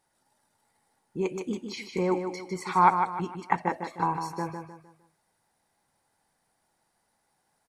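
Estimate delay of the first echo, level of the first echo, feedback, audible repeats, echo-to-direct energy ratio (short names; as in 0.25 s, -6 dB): 0.153 s, -7.0 dB, 36%, 4, -6.5 dB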